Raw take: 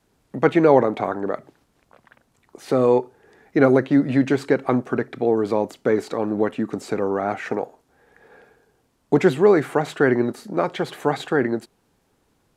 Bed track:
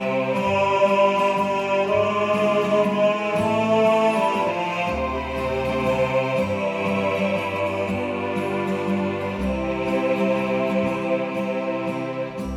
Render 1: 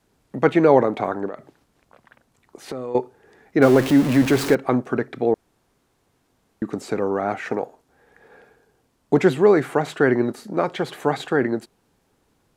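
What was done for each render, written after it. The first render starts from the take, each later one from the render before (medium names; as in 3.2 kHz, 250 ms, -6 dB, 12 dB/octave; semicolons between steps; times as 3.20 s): 1.26–2.95 s: compression, threshold -27 dBFS; 3.62–4.55 s: jump at every zero crossing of -22 dBFS; 5.34–6.62 s: room tone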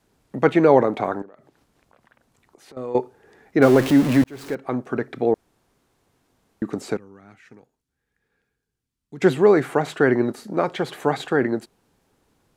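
1.22–2.77 s: compression 2:1, threshold -55 dBFS; 4.24–5.17 s: fade in; 6.97–9.22 s: amplifier tone stack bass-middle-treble 6-0-2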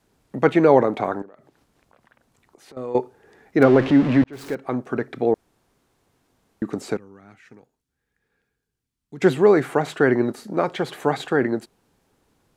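3.63–4.33 s: low-pass 3.1 kHz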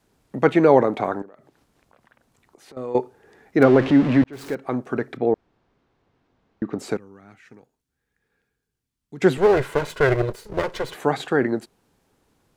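5.17–6.79 s: distance through air 200 m; 9.37–10.95 s: comb filter that takes the minimum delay 2 ms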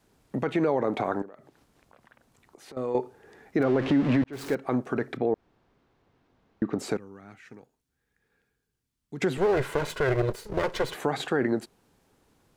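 compression, threshold -18 dBFS, peak gain reduction 9.5 dB; peak limiter -15 dBFS, peak gain reduction 7.5 dB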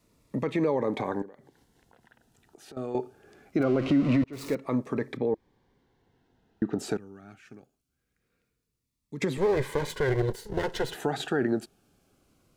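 Shepard-style phaser falling 0.23 Hz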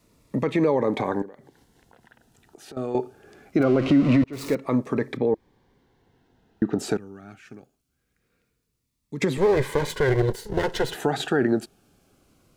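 trim +5 dB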